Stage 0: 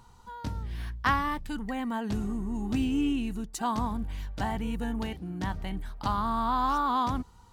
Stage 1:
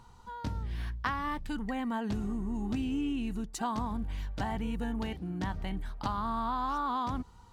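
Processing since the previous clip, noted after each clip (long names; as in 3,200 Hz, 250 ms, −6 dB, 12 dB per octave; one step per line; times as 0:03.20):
high-shelf EQ 8,200 Hz −7 dB
downward compressor 6 to 1, threshold −29 dBFS, peak gain reduction 9 dB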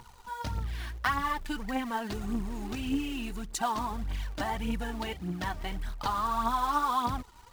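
low-shelf EQ 450 Hz −7.5 dB
in parallel at −5 dB: log-companded quantiser 4 bits
on the sum: phase shifter 1.7 Hz, delay 3.5 ms, feedback 53%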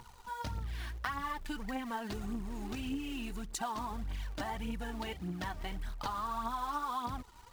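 downward compressor 2.5 to 1, threshold −34 dBFS, peak gain reduction 7.5 dB
level −2 dB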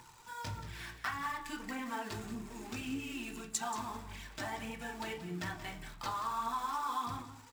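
single-tap delay 180 ms −12.5 dB
convolution reverb RT60 0.40 s, pre-delay 3 ms, DRR 2.5 dB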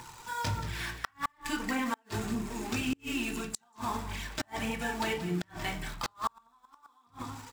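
gate with flip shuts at −28 dBFS, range −37 dB
level +9 dB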